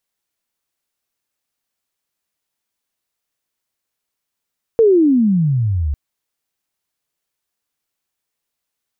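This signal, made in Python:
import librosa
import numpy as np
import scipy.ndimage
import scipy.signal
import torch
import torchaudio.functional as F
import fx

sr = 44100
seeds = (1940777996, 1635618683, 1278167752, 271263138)

y = fx.riser_tone(sr, length_s=1.15, level_db=-7, wave='sine', hz=470.0, rise_st=-33.5, swell_db=-9.0)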